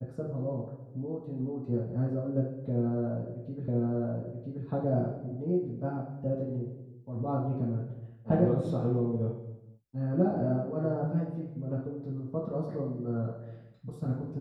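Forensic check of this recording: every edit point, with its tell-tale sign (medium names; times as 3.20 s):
3.68 s: repeat of the last 0.98 s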